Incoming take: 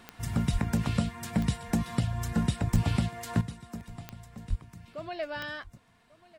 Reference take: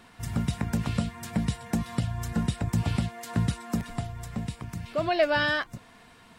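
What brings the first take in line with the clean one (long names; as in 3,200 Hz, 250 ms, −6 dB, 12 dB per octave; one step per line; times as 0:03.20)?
click removal
0:00.52–0:00.64: high-pass filter 140 Hz 24 dB per octave
0:02.72–0:02.84: high-pass filter 140 Hz 24 dB per octave
0:04.49–0:04.61: high-pass filter 140 Hz 24 dB per octave
echo removal 1,143 ms −21.5 dB
level 0 dB, from 0:03.41 +12 dB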